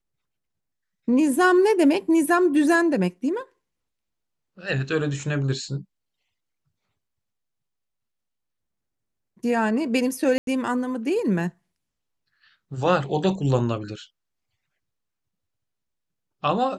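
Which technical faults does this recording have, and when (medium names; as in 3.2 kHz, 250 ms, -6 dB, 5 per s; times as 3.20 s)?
10.38–10.47 s: dropout 92 ms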